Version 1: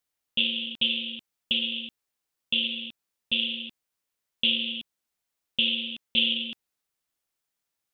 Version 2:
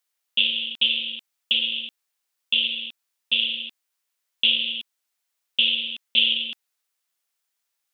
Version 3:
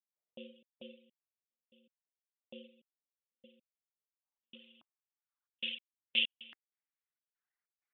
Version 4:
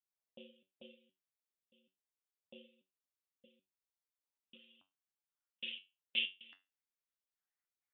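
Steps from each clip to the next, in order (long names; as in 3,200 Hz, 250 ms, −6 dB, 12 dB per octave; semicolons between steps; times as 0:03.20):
high-pass filter 1,000 Hz 6 dB per octave; level +5 dB
reverb reduction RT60 1.4 s; gate pattern ".xxx.xx.x..x.x" 96 BPM −60 dB; low-pass filter sweep 570 Hz → 2,000 Hz, 0:03.64–0:05.91; level −8 dB
tuned comb filter 94 Hz, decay 0.25 s, harmonics all, mix 80%; level +2.5 dB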